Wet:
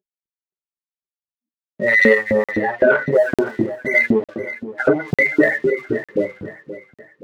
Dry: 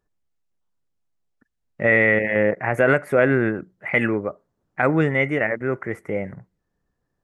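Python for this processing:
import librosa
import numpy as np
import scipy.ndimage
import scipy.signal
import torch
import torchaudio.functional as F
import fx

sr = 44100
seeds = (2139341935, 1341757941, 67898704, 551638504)

p1 = fx.room_shoebox(x, sr, seeds[0], volume_m3=90.0, walls='mixed', distance_m=1.3)
p2 = fx.spec_gate(p1, sr, threshold_db=-10, keep='strong')
p3 = fx.bass_treble(p2, sr, bass_db=14, treble_db=7)
p4 = fx.leveller(p3, sr, passes=1)
p5 = fx.filter_lfo_highpass(p4, sr, shape='saw_up', hz=3.9, low_hz=260.0, high_hz=2800.0, q=1.1)
p6 = fx.air_absorb(p5, sr, metres=150.0, at=(2.51, 3.12))
p7 = fx.env_lowpass_down(p6, sr, base_hz=2900.0, full_db=-9.0, at=(4.06, 5.08))
p8 = fx.dispersion(p7, sr, late='highs', ms=70.0, hz=920.0, at=(5.7, 6.25))
p9 = p8 + fx.echo_feedback(p8, sr, ms=523, feedback_pct=42, wet_db=-14.5, dry=0)
p10 = fx.buffer_crackle(p9, sr, first_s=0.64, period_s=0.9, block=2048, kind='zero')
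y = F.gain(torch.from_numpy(p10), -3.0).numpy()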